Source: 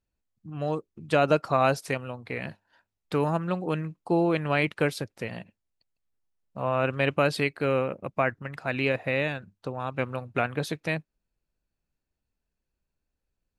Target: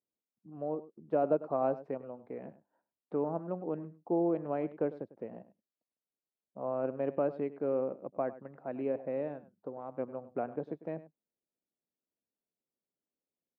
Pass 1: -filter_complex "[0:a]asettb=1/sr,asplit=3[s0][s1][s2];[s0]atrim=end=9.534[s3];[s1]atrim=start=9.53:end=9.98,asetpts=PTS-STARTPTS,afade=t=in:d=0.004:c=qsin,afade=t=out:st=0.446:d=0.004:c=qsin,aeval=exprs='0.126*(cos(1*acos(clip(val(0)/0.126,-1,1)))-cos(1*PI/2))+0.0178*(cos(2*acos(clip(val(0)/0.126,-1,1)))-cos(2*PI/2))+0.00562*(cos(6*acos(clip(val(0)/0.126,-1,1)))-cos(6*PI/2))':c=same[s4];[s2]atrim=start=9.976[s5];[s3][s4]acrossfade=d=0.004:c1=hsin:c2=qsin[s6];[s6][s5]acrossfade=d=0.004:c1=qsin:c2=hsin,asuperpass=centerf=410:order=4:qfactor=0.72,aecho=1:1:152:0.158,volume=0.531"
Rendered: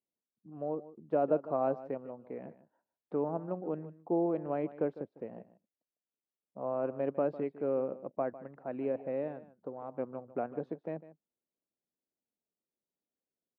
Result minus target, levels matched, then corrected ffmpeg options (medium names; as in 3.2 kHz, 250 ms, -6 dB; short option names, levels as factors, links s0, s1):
echo 52 ms late
-filter_complex "[0:a]asettb=1/sr,asplit=3[s0][s1][s2];[s0]atrim=end=9.534[s3];[s1]atrim=start=9.53:end=9.98,asetpts=PTS-STARTPTS,afade=t=in:d=0.004:c=qsin,afade=t=out:st=0.446:d=0.004:c=qsin,aeval=exprs='0.126*(cos(1*acos(clip(val(0)/0.126,-1,1)))-cos(1*PI/2))+0.0178*(cos(2*acos(clip(val(0)/0.126,-1,1)))-cos(2*PI/2))+0.00562*(cos(6*acos(clip(val(0)/0.126,-1,1)))-cos(6*PI/2))':c=same[s4];[s2]atrim=start=9.976[s5];[s3][s4]acrossfade=d=0.004:c1=hsin:c2=qsin[s6];[s6][s5]acrossfade=d=0.004:c1=qsin:c2=hsin,asuperpass=centerf=410:order=4:qfactor=0.72,aecho=1:1:100:0.158,volume=0.531"